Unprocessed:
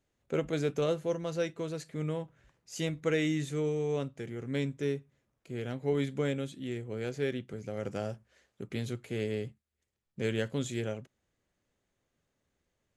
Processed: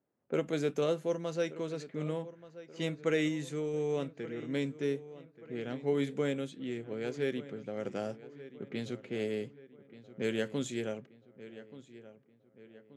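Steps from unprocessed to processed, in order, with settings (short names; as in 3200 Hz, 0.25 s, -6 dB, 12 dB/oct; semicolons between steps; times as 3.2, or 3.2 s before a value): Chebyshev high-pass 200 Hz, order 2; low-pass opened by the level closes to 1200 Hz, open at -30 dBFS; 3.28–3.74 compressor 2:1, threshold -34 dBFS, peak gain reduction 4 dB; darkening echo 1.18 s, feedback 48%, low-pass 3100 Hz, level -16 dB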